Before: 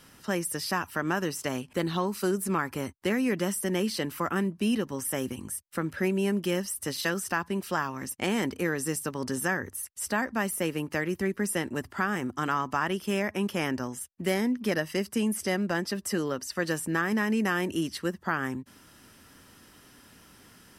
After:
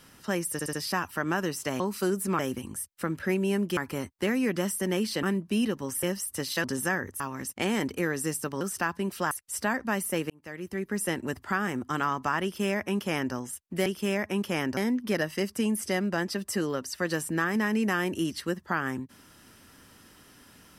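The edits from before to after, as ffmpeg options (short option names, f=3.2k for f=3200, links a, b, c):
-filter_complex "[0:a]asplit=16[a][b][c][d][e][f][g][h][i][j][k][l][m][n][o][p];[a]atrim=end=0.592[q];[b]atrim=start=0.518:end=0.592[r];[c]atrim=start=0.518:end=0.592[s];[d]atrim=start=0.518:end=1.592[t];[e]atrim=start=2.008:end=2.602[u];[f]atrim=start=5.128:end=6.512[v];[g]atrim=start=2.598:end=4.062[w];[h]atrim=start=4.328:end=5.132[x];[i]atrim=start=6.508:end=7.122[y];[j]atrim=start=9.228:end=9.792[z];[k]atrim=start=7.818:end=9.232[aa];[l]atrim=start=7.118:end=7.822[ab];[m]atrim=start=9.788:end=10.78,asetpts=PTS-STARTPTS,afade=t=out:st=0.988:d=0.004:c=hsin[ac];[n]atrim=start=10.78:end=14.342,asetpts=PTS-STARTPTS,afade=t=in:d=0.77[ad];[o]atrim=start=12.908:end=13.822[ae];[p]atrim=start=14.338[af];[q][r]acrossfade=d=0.004:c1=hsin:c2=hsin[ag];[ag][s]acrossfade=d=0.004:c1=hsin:c2=hsin[ah];[ah][t]acrossfade=d=0.004:c1=hsin:c2=hsin[ai];[ai][u]acrossfade=d=0.004:c1=hsin:c2=hsin[aj];[aj][v]acrossfade=d=0.004:c1=hsin:c2=hsin[ak];[ak][w]acrossfade=d=0.004:c1=hsin:c2=hsin[al];[al][x]acrossfade=d=0.004:c1=hsin:c2=hsin[am];[am][y]acrossfade=d=0.004:c1=hsin:c2=hsin[an];[an][z]acrossfade=d=0.004:c1=hsin:c2=hsin[ao];[ao][aa]acrossfade=d=0.004:c1=hsin:c2=hsin[ap];[ap][ab]acrossfade=d=0.004:c1=hsin:c2=hsin[aq];[ac][ad]concat=n=2:v=0:a=1[ar];[aq][ar]acrossfade=d=0.004:c1=hsin:c2=hsin[as];[as][ae]acrossfade=d=0.004:c1=hsin:c2=hsin[at];[at][af]acrossfade=d=0.004:c1=hsin:c2=hsin"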